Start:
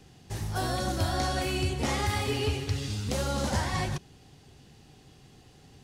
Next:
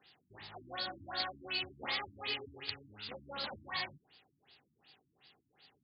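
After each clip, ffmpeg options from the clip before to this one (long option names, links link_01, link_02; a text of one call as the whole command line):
ffmpeg -i in.wav -af "aderivative,afftfilt=real='re*lt(b*sr/1024,300*pow(5200/300,0.5+0.5*sin(2*PI*2.7*pts/sr)))':imag='im*lt(b*sr/1024,300*pow(5200/300,0.5+0.5*sin(2*PI*2.7*pts/sr)))':win_size=1024:overlap=0.75,volume=9dB" out.wav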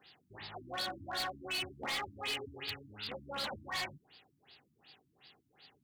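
ffmpeg -i in.wav -af "asoftclip=type=hard:threshold=-36.5dB,volume=3.5dB" out.wav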